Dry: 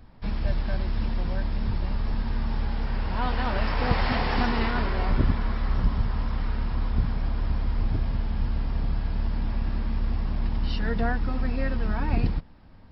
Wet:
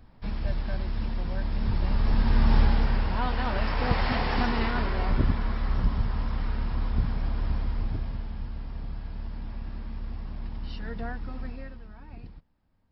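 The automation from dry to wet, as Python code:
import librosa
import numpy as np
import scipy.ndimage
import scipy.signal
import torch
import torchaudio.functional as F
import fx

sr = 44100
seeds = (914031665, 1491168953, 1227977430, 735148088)

y = fx.gain(x, sr, db=fx.line((1.29, -3.0), (2.58, 8.0), (3.27, -1.5), (7.54, -1.5), (8.49, -9.0), (11.46, -9.0), (11.89, -20.0)))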